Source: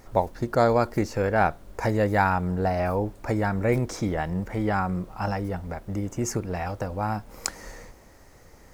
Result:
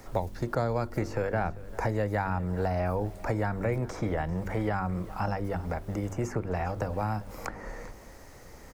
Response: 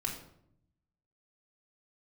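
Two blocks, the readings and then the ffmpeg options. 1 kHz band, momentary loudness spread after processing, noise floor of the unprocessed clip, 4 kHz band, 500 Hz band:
-6.5 dB, 12 LU, -51 dBFS, -8.5 dB, -5.5 dB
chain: -filter_complex "[0:a]bandreject=f=48.81:t=h:w=4,bandreject=f=97.62:t=h:w=4,bandreject=f=146.43:t=h:w=4,bandreject=f=195.24:t=h:w=4,bandreject=f=244.05:t=h:w=4,bandreject=f=292.86:t=h:w=4,bandreject=f=341.67:t=h:w=4,bandreject=f=390.48:t=h:w=4,acrossover=split=130|400|2100[s0][s1][s2][s3];[s0]acompressor=threshold=0.0178:ratio=4[s4];[s1]acompressor=threshold=0.00891:ratio=4[s5];[s2]acompressor=threshold=0.02:ratio=4[s6];[s3]acompressor=threshold=0.002:ratio=4[s7];[s4][s5][s6][s7]amix=inputs=4:normalize=0,aecho=1:1:395:0.106,volume=1.41"

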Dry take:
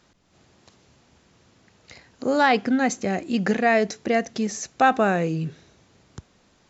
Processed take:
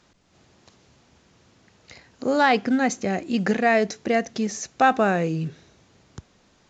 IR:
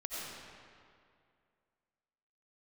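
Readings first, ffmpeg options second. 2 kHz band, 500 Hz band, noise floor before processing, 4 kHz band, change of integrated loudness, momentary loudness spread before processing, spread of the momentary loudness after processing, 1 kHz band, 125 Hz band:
0.0 dB, 0.0 dB, -61 dBFS, 0.0 dB, 0.0 dB, 9 LU, 9 LU, 0.0 dB, 0.0 dB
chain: -ar 16000 -c:a pcm_alaw

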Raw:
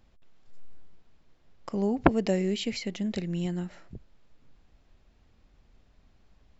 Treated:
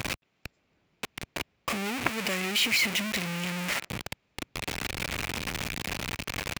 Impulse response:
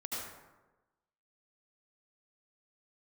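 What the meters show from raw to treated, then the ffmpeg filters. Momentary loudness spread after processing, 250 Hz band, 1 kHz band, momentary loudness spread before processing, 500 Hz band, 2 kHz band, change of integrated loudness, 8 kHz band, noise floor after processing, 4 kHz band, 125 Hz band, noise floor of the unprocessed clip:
16 LU, -5.0 dB, +1.0 dB, 12 LU, -5.5 dB, +12.5 dB, -1.0 dB, no reading, -74 dBFS, +12.0 dB, -2.0 dB, -63 dBFS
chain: -filter_complex "[0:a]aeval=exprs='val(0)+0.5*0.106*sgn(val(0))':c=same,highpass=82,acrossover=split=1000[s0][s1];[s0]acompressor=threshold=0.0316:ratio=6[s2];[s2][s1]amix=inputs=2:normalize=0,equalizer=f=2400:t=o:w=0.55:g=8,volume=0.708"

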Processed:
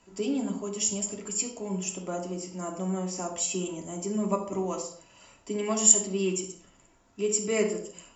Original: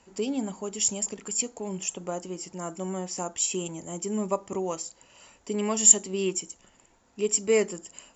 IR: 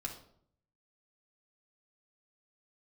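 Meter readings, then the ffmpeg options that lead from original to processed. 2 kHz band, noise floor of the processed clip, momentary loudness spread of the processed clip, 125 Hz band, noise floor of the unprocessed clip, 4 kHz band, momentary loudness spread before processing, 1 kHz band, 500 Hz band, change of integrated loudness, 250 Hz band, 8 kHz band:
-1.5 dB, -61 dBFS, 14 LU, +2.5 dB, -62 dBFS, -1.5 dB, 16 LU, -0.5 dB, -1.5 dB, -1.5 dB, +1.5 dB, no reading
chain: -filter_complex "[1:a]atrim=start_sample=2205,afade=t=out:st=0.35:d=0.01,atrim=end_sample=15876,asetrate=43218,aresample=44100[s0];[0:a][s0]afir=irnorm=-1:irlink=0"

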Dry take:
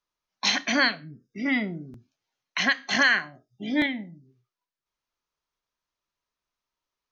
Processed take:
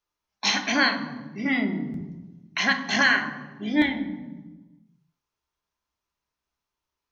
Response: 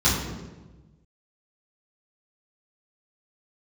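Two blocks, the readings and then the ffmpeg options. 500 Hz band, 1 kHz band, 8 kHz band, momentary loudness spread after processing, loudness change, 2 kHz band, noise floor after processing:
+0.5 dB, +3.0 dB, no reading, 17 LU, 0.0 dB, +0.5 dB, under -85 dBFS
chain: -filter_complex "[0:a]asplit=2[s0][s1];[s1]equalizer=f=930:t=o:w=0.96:g=7.5[s2];[1:a]atrim=start_sample=2205[s3];[s2][s3]afir=irnorm=-1:irlink=0,volume=0.0668[s4];[s0][s4]amix=inputs=2:normalize=0"

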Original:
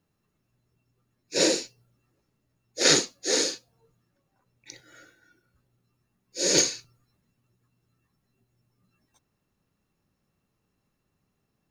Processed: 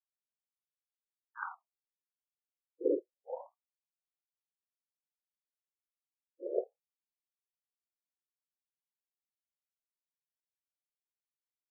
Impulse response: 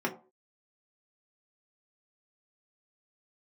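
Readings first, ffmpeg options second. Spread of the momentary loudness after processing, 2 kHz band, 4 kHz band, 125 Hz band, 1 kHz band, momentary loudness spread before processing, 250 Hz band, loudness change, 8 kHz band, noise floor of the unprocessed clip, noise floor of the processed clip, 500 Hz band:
20 LU, under -15 dB, under -40 dB, under -40 dB, -9.0 dB, 21 LU, -12.0 dB, -15.5 dB, under -40 dB, -77 dBFS, under -85 dBFS, -8.0 dB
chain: -af "aeval=exprs='0.562*(cos(1*acos(clip(val(0)/0.562,-1,1)))-cos(1*PI/2))+0.0794*(cos(7*acos(clip(val(0)/0.562,-1,1)))-cos(7*PI/2))':c=same,agate=range=0.0224:threshold=0.00141:ratio=3:detection=peak,afftfilt=real='re*between(b*sr/1024,350*pow(1700/350,0.5+0.5*sin(2*PI*0.29*pts/sr))/1.41,350*pow(1700/350,0.5+0.5*sin(2*PI*0.29*pts/sr))*1.41)':imag='im*between(b*sr/1024,350*pow(1700/350,0.5+0.5*sin(2*PI*0.29*pts/sr))/1.41,350*pow(1700/350,0.5+0.5*sin(2*PI*0.29*pts/sr))*1.41)':win_size=1024:overlap=0.75"

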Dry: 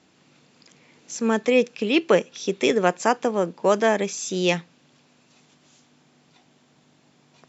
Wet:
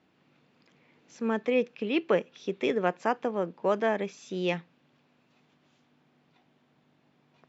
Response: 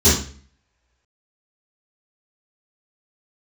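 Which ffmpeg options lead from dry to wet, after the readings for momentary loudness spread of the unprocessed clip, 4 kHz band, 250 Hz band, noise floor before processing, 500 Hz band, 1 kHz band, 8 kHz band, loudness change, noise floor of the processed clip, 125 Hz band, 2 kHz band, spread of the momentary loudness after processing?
7 LU, -11.0 dB, -7.0 dB, -61 dBFS, -7.0 dB, -7.0 dB, no reading, -7.5 dB, -68 dBFS, -7.0 dB, -8.0 dB, 7 LU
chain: -af "lowpass=3000,volume=0.447"

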